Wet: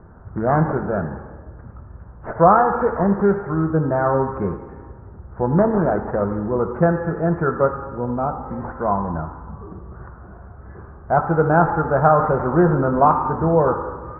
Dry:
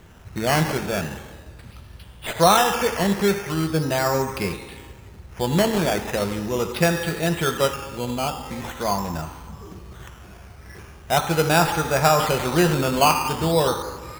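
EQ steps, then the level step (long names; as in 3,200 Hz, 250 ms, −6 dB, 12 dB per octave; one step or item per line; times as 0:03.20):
Butterworth low-pass 1,500 Hz 48 dB per octave
+3.5 dB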